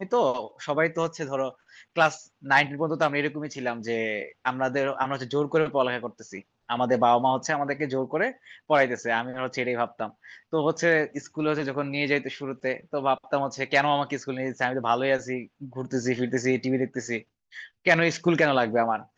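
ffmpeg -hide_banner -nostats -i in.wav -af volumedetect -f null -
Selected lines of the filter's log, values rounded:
mean_volume: -26.3 dB
max_volume: -7.3 dB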